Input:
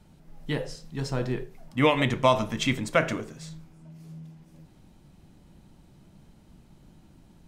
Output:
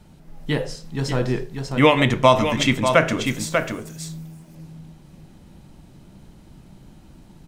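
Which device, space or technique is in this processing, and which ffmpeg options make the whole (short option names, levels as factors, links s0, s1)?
ducked delay: -filter_complex "[0:a]asettb=1/sr,asplit=3[s0][s1][s2];[s0]atrim=end=3.264[s3];[s1]atrim=start=3.26:end=3.96,asetpts=PTS-STARTPTS,afade=t=in:d=0.004:c=qsin,afade=t=out:st=0.696:d=0.004:c=qsin,aemphasis=mode=production:type=75fm[s4];[s2]atrim=start=3.956[s5];[s3][s4]acrossfade=d=0.004:c1=hsin:c2=qsin[s6];[s6][s5]acrossfade=d=0.004:c1=qsin:c2=hsin,asplit=3[s7][s8][s9];[s8]adelay=592,volume=0.562[s10];[s9]apad=whole_len=355919[s11];[s10][s11]sidechaincompress=threshold=0.0316:ratio=8:attack=10:release=166[s12];[s7][s12]amix=inputs=2:normalize=0,volume=2.11"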